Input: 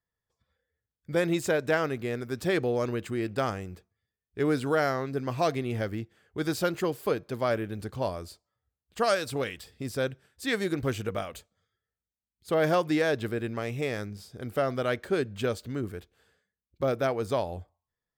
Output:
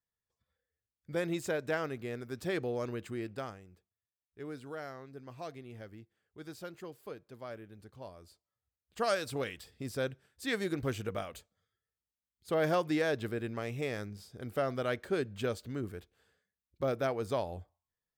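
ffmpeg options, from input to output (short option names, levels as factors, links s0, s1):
-af "volume=1.68,afade=t=out:st=3.17:d=0.43:silence=0.334965,afade=t=in:st=8.15:d=1.03:silence=0.251189"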